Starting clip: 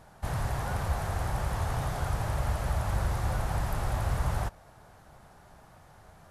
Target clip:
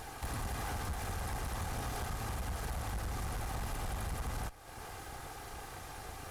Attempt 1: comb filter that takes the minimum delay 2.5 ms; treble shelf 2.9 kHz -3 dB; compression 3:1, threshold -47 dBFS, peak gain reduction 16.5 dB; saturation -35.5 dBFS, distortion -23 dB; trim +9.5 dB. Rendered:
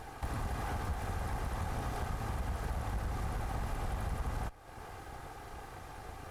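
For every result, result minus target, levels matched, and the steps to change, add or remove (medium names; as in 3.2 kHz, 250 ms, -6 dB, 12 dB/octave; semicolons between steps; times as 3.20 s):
8 kHz band -8.0 dB; saturation: distortion -9 dB
change: treble shelf 2.9 kHz +6.5 dB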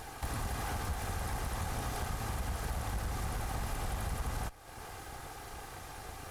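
saturation: distortion -8 dB
change: saturation -41.5 dBFS, distortion -14 dB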